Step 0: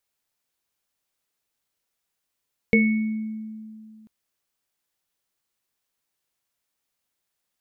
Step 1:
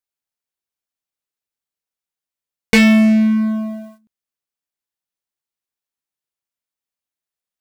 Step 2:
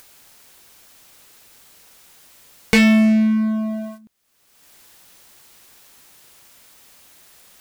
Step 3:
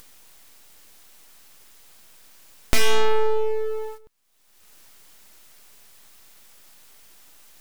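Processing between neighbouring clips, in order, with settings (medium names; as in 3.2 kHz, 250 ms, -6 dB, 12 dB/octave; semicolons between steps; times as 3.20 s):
waveshaping leveller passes 5
upward compressor, threshold -15 dBFS; trim -2.5 dB
full-wave rectifier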